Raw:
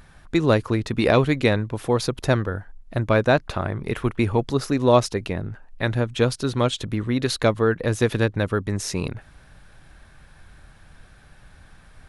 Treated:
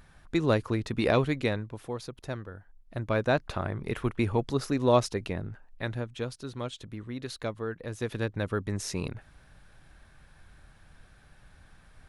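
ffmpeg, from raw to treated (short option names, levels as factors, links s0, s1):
-af "volume=3.76,afade=t=out:st=1.13:d=0.88:silence=0.334965,afade=t=in:st=2.58:d=0.94:silence=0.316228,afade=t=out:st=5.35:d=0.9:silence=0.375837,afade=t=in:st=7.92:d=0.69:silence=0.398107"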